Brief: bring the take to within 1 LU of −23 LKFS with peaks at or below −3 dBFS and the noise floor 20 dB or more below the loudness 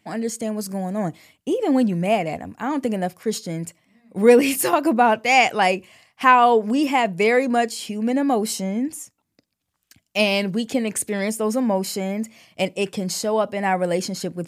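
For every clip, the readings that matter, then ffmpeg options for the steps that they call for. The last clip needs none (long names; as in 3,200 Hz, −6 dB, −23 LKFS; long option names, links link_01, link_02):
integrated loudness −21.0 LKFS; sample peak −2.0 dBFS; target loudness −23.0 LKFS
→ -af "volume=-2dB"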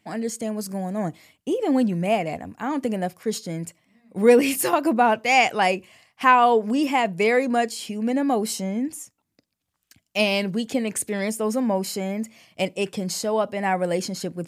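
integrated loudness −23.0 LKFS; sample peak −4.0 dBFS; background noise floor −79 dBFS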